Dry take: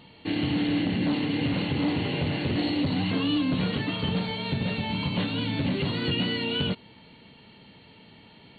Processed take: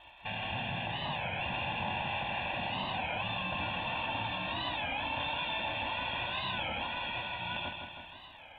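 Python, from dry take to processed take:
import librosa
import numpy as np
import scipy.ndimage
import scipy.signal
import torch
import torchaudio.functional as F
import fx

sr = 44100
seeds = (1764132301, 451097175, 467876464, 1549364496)

p1 = fx.spec_gate(x, sr, threshold_db=-10, keep='weak')
p2 = p1 + 10.0 ** (-5.5 / 20.0) * np.pad(p1, (int(955 * sr / 1000.0), 0))[:len(p1)]
p3 = fx.over_compress(p2, sr, threshold_db=-39.0, ratio=-1.0)
p4 = p2 + F.gain(torch.from_numpy(p3), 1.0).numpy()
p5 = scipy.signal.sosfilt(scipy.signal.cheby1(6, 6, 3700.0, 'lowpass', fs=sr, output='sos'), p4)
p6 = fx.dmg_crackle(p5, sr, seeds[0], per_s=110.0, level_db=-60.0)
p7 = p6 + 0.98 * np.pad(p6, (int(1.2 * sr / 1000.0), 0))[:len(p6)]
p8 = fx.echo_feedback(p7, sr, ms=160, feedback_pct=58, wet_db=-6)
p9 = fx.record_warp(p8, sr, rpm=33.33, depth_cents=160.0)
y = F.gain(torch.from_numpy(p9), -6.5).numpy()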